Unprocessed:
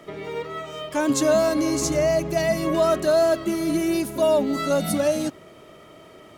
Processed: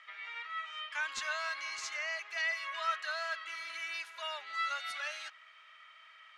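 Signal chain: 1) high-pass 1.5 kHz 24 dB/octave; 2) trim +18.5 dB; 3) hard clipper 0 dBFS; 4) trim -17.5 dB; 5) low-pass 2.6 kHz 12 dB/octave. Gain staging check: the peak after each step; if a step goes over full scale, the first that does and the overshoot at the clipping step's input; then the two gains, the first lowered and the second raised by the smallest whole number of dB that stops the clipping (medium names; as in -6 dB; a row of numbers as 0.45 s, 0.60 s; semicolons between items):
-13.0 dBFS, +5.5 dBFS, 0.0 dBFS, -17.5 dBFS, -22.0 dBFS; step 2, 5.5 dB; step 2 +12.5 dB, step 4 -11.5 dB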